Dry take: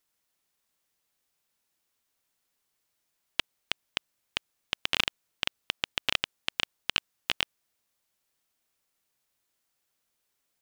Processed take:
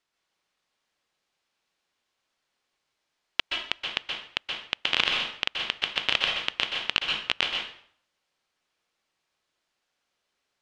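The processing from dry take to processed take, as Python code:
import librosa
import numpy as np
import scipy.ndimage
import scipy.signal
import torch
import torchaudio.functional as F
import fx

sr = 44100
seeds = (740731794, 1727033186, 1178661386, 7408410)

y = scipy.signal.sosfilt(scipy.signal.butter(2, 4600.0, 'lowpass', fs=sr, output='sos'), x)
y = fx.low_shelf(y, sr, hz=220.0, db=-6.5)
y = fx.rev_plate(y, sr, seeds[0], rt60_s=0.57, hf_ratio=0.85, predelay_ms=115, drr_db=1.0)
y = y * librosa.db_to_amplitude(3.0)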